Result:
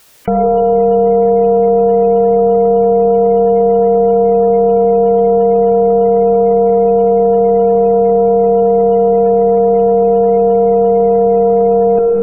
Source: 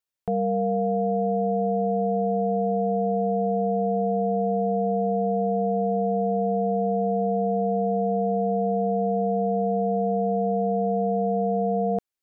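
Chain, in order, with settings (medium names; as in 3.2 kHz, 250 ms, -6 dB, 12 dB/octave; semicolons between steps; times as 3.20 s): in parallel at -3.5 dB: Schmitt trigger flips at -38.5 dBFS; on the sum: spectral gate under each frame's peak -25 dB strong; on a send at -4 dB: peaking EQ 440 Hz +13.5 dB 0.75 oct + reverberation RT60 2.0 s, pre-delay 35 ms; on the sum: level flattener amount 70%; trim +2.5 dB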